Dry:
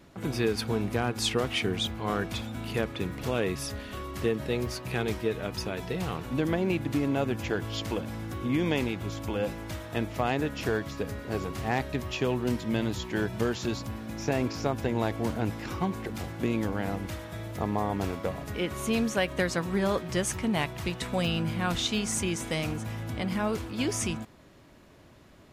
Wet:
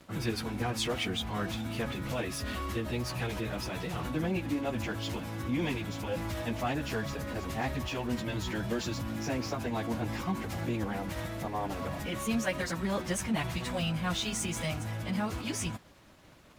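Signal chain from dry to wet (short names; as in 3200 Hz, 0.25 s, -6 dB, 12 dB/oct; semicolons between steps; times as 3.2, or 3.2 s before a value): bell 410 Hz -7.5 dB 0.38 oct; in parallel at -1 dB: negative-ratio compressor -41 dBFS, ratio -1; on the sum: crossover distortion -45 dBFS; plain phase-vocoder stretch 0.65×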